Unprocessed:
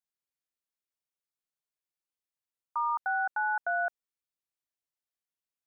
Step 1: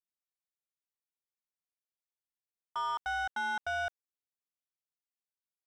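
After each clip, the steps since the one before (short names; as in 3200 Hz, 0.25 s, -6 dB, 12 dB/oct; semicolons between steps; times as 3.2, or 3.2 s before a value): sample leveller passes 2; gain -6.5 dB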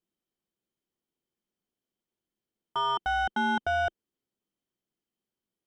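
tilt -1.5 dB/oct; small resonant body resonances 220/340/3100 Hz, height 13 dB, ringing for 25 ms; gain +4 dB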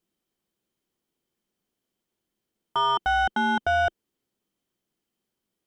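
limiter -22.5 dBFS, peak gain reduction 4 dB; gain +7 dB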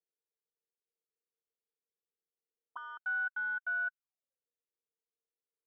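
auto-wah 460–1500 Hz, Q 16, up, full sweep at -25 dBFS; gain -4.5 dB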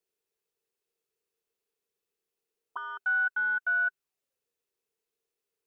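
small resonant body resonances 400/2600 Hz, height 9 dB; gain +7 dB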